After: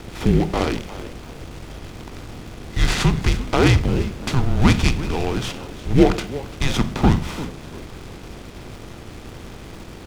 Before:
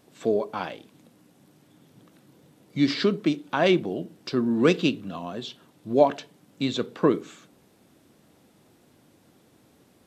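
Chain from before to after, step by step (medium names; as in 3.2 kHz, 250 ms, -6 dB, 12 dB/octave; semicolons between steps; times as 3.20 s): spectral levelling over time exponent 0.6; frequency-shifting echo 344 ms, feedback 36%, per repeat +94 Hz, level -16.5 dB; frequency shift -250 Hz; in parallel at -12 dB: word length cut 6-bit, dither none; on the sum: delay time shaken by noise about 2 kHz, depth 0.035 ms; trim +1.5 dB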